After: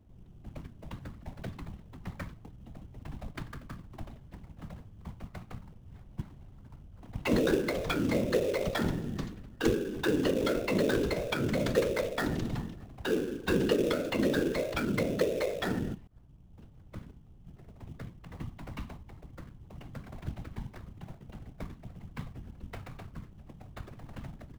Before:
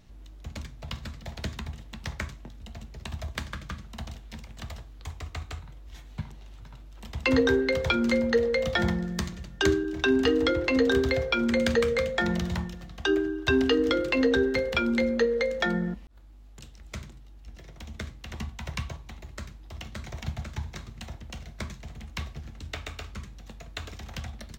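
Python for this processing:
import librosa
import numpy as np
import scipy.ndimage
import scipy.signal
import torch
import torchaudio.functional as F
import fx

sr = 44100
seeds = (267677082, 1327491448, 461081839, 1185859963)

p1 = fx.env_lowpass(x, sr, base_hz=1100.0, full_db=-21.5)
p2 = fx.whisperise(p1, sr, seeds[0])
p3 = fx.sample_hold(p2, sr, seeds[1], rate_hz=3100.0, jitter_pct=20)
p4 = p2 + (p3 * 10.0 ** (-4.0 / 20.0))
y = p4 * 10.0 ** (-8.5 / 20.0)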